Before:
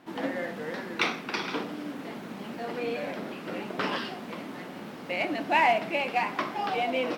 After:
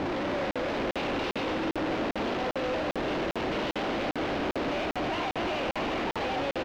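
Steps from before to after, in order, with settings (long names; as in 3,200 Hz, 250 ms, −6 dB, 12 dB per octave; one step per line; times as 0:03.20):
compressor on every frequency bin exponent 0.6
high-pass filter 200 Hz 12 dB per octave
flat-topped bell 1,200 Hz −8.5 dB
downward compressor, threshold −29 dBFS, peak gain reduction 8.5 dB
comparator with hysteresis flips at −43 dBFS
speed change +8%
high-frequency loss of the air 220 metres
single-tap delay 250 ms −6.5 dB
regular buffer underruns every 0.40 s, samples 2,048, zero, from 0:00.51
level +4 dB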